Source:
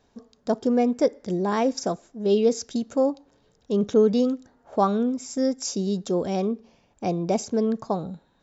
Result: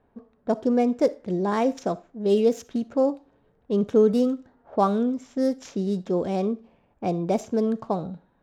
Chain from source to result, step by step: median filter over 9 samples; level-controlled noise filter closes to 2 kHz, open at -18 dBFS; on a send: reverberation RT60 0.25 s, pre-delay 20 ms, DRR 18.5 dB

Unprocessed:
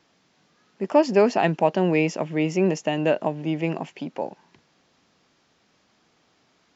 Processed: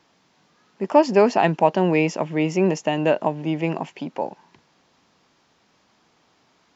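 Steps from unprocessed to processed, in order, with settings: peaking EQ 950 Hz +4.5 dB 0.51 oct; trim +1.5 dB

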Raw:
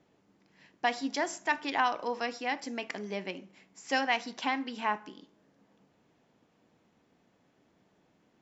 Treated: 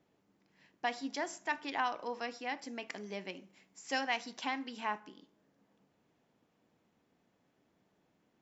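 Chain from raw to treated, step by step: 2.88–5.00 s: treble shelf 5.6 kHz +7 dB; trim -6 dB

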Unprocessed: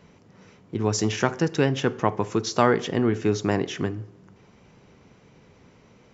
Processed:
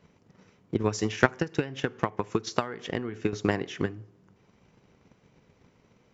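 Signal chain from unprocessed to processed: dynamic bell 2.1 kHz, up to +5 dB, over -39 dBFS, Q 0.83; 1.26–3.33 s: compression 6:1, threshold -23 dBFS, peak gain reduction 11.5 dB; transient shaper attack +12 dB, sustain 0 dB; trim -9 dB

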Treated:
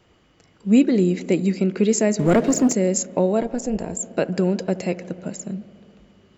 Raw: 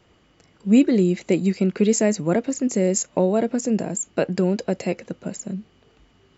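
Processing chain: feedback echo behind a low-pass 72 ms, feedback 84%, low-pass 1.7 kHz, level -19.5 dB; 2.19–2.73 s: waveshaping leveller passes 2; 3.42–4.00 s: AM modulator 250 Hz, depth 50%

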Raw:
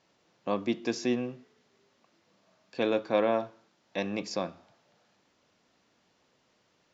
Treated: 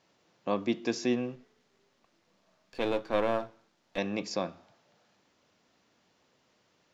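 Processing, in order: 1.35–3.98 s: partial rectifier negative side -7 dB

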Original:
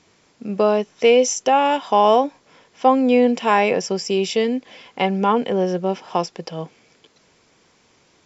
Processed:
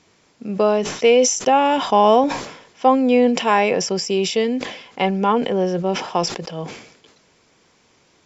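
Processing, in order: 1.46–2.24 s: bass shelf 170 Hz +11 dB; decay stretcher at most 77 dB/s

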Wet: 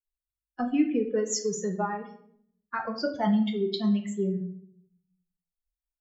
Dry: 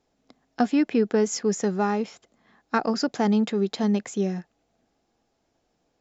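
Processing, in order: expander on every frequency bin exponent 3; 1.80–3.14 s: peaking EQ 6.9 kHz -5.5 dB -> -14 dB 1.7 oct; in parallel at -2 dB: compression, threshold -32 dBFS, peak gain reduction 12.5 dB; on the sum: peak limiter -19.5 dBFS, peak gain reduction 8 dB; reverberation RT60 0.65 s, pre-delay 6 ms, DRR 3 dB

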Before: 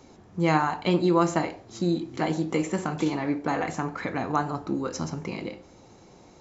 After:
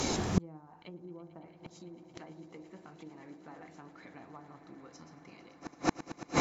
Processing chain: low-pass that closes with the level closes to 480 Hz, closed at -18.5 dBFS; treble shelf 2.3 kHz +9.5 dB; in parallel at +1.5 dB: compression 4:1, threshold -40 dBFS, peak gain reduction 18 dB; on the sum: echo with a slow build-up 112 ms, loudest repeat 8, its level -17.5 dB; inverted gate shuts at -22 dBFS, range -38 dB; trim +11.5 dB

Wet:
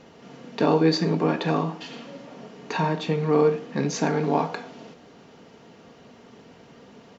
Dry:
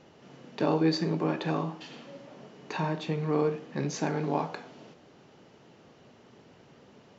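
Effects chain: comb 4.3 ms, depth 34%; trim +6 dB

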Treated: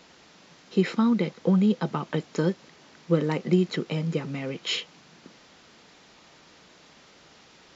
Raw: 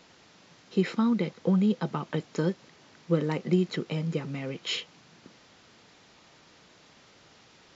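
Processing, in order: peaking EQ 110 Hz -13 dB 0.24 oct; trim +3 dB

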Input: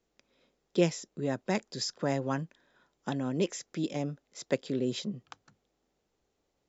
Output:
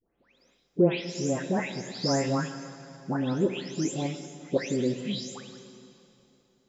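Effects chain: delay that grows with frequency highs late, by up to 372 ms; plate-style reverb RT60 2.8 s, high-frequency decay 0.95×, DRR 8.5 dB; trim +4 dB

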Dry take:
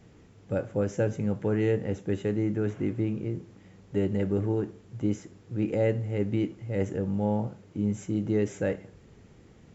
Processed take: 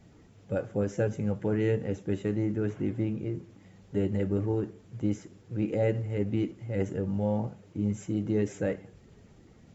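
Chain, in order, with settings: coarse spectral quantiser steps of 15 dB; trim -1 dB

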